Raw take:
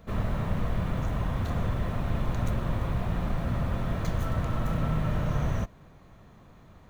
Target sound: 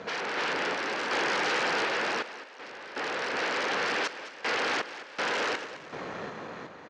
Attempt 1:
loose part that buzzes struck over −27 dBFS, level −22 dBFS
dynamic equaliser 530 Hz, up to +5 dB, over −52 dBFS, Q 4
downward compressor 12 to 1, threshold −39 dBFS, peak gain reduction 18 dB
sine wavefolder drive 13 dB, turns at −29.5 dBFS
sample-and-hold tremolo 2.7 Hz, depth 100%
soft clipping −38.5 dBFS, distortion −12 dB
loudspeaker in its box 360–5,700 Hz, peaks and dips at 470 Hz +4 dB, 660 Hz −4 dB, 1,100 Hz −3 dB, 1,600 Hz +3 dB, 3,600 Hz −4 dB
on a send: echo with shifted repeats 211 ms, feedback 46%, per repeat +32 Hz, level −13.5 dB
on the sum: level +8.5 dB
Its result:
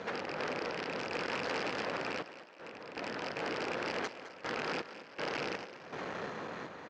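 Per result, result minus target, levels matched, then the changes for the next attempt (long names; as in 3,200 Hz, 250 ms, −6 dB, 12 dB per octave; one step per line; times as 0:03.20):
downward compressor: peak gain reduction +9.5 dB; soft clipping: distortion +9 dB
change: downward compressor 12 to 1, threshold −28.5 dBFS, peak gain reduction 8.5 dB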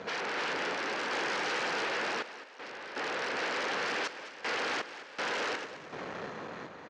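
soft clipping: distortion +9 dB
change: soft clipping −31 dBFS, distortion −21 dB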